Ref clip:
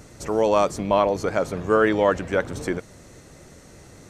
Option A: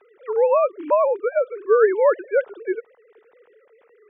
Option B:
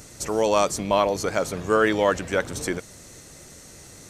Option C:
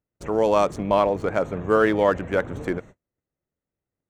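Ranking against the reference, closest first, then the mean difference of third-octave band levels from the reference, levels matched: B, C, A; 3.5, 7.0, 17.0 decibels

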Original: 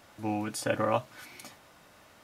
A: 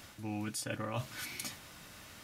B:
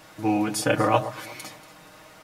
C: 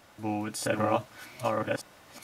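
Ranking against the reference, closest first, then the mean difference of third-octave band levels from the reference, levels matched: B, C, A; 2.5, 4.5, 9.0 decibels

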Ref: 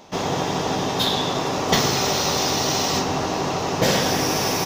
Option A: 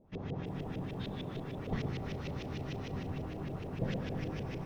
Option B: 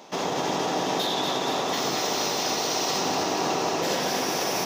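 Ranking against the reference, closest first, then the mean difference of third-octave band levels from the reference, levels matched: B, A; 3.0, 10.0 decibels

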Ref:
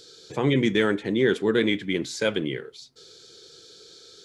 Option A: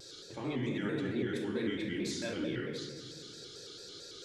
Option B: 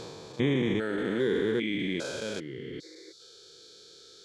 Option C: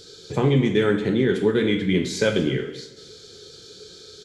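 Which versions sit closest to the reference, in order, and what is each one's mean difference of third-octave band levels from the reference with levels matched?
C, B, A; 3.5, 5.5, 9.5 decibels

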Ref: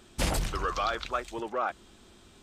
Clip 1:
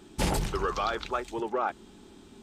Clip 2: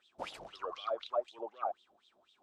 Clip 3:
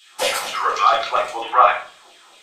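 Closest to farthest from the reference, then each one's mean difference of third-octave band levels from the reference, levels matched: 1, 3, 2; 2.5, 8.5, 12.5 decibels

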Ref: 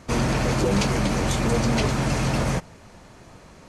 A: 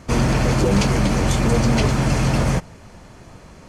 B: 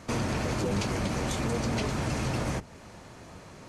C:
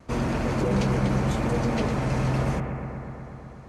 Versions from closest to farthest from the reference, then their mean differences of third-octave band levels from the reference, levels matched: A, B, C; 1.5, 2.5, 5.0 decibels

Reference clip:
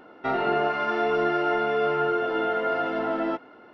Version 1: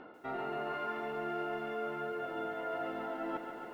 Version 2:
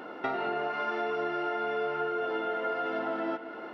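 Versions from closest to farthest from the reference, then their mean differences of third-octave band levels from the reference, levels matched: 2, 1; 3.0, 5.0 decibels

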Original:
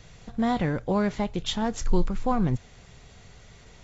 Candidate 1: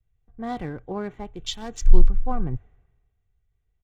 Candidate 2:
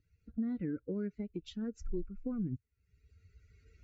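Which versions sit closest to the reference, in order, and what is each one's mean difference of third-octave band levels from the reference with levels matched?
1, 2; 8.0, 11.5 decibels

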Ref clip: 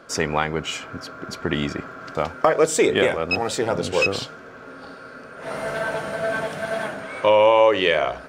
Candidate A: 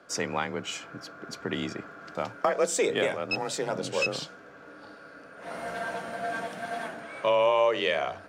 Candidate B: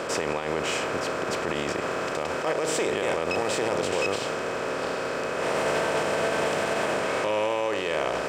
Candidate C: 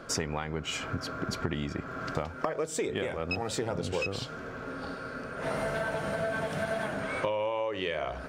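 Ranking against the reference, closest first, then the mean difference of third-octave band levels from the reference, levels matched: A, C, B; 2.5, 6.0, 9.5 decibels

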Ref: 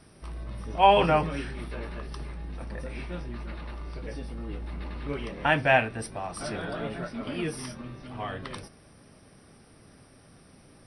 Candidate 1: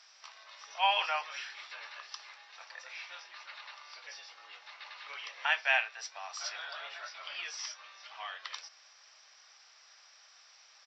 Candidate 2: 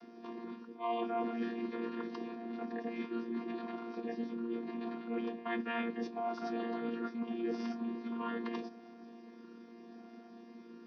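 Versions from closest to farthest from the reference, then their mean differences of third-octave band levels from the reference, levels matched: 2, 1; 9.0, 15.0 decibels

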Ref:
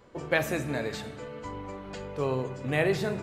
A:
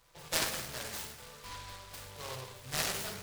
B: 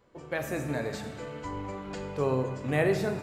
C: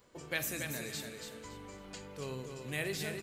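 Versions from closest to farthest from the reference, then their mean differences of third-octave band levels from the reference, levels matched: B, C, A; 2.5, 6.5, 11.0 decibels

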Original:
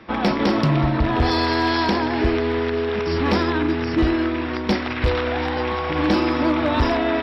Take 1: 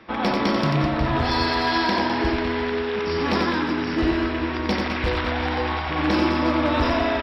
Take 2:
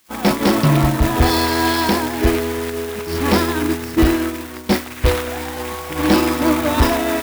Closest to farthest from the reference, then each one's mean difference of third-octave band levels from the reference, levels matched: 1, 2; 2.5, 8.5 decibels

